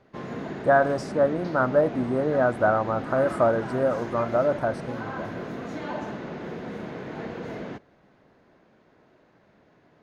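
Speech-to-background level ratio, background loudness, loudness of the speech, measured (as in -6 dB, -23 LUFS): 11.0 dB, -35.0 LUFS, -24.0 LUFS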